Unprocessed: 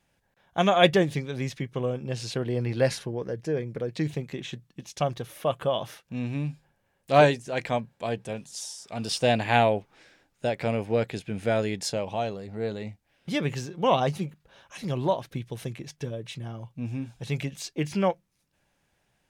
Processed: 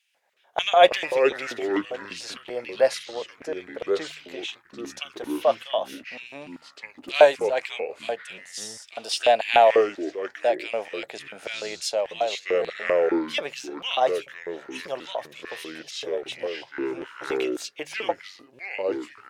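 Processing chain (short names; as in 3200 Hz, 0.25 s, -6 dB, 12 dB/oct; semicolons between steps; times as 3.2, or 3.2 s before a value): LFO high-pass square 3.4 Hz 620–2700 Hz; echoes that change speed 0.137 s, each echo -5 st, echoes 2, each echo -6 dB; de-hum 76.8 Hz, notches 2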